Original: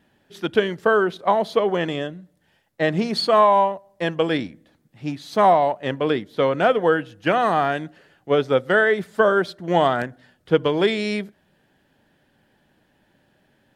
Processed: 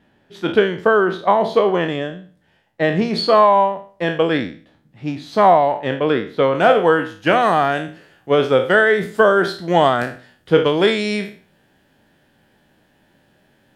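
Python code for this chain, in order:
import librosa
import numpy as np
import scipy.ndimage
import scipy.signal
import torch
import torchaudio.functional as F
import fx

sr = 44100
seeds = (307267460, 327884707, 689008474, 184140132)

y = fx.spec_trails(x, sr, decay_s=0.41)
y = fx.high_shelf(y, sr, hz=5700.0, db=fx.steps((0.0, -11.5), (6.54, 2.0)))
y = y * 10.0 ** (3.0 / 20.0)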